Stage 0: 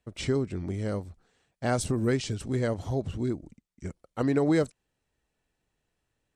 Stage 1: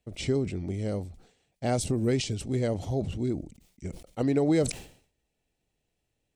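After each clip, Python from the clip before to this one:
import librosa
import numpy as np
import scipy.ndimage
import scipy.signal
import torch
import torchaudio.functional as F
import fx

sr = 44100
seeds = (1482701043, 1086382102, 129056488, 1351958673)

y = fx.band_shelf(x, sr, hz=1300.0, db=-8.0, octaves=1.1)
y = fx.sustainer(y, sr, db_per_s=110.0)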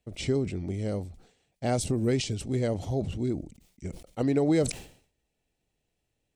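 y = x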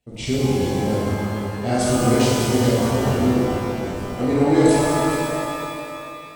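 y = x + 10.0 ** (-9.5 / 20.0) * np.pad(x, (int(423 * sr / 1000.0), 0))[:len(x)]
y = fx.rev_shimmer(y, sr, seeds[0], rt60_s=2.7, semitones=12, shimmer_db=-8, drr_db=-8.5)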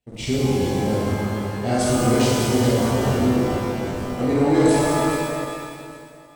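y = fx.fade_out_tail(x, sr, length_s=1.31)
y = fx.leveller(y, sr, passes=1)
y = y + 10.0 ** (-18.0 / 20.0) * np.pad(y, (int(817 * sr / 1000.0), 0))[:len(y)]
y = y * librosa.db_to_amplitude(-4.0)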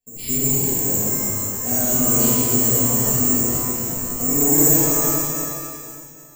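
y = (np.kron(scipy.signal.resample_poly(x, 1, 6), np.eye(6)[0]) * 6)[:len(x)]
y = fx.room_shoebox(y, sr, seeds[1], volume_m3=240.0, walls='mixed', distance_m=1.7)
y = y * librosa.db_to_amplitude(-11.0)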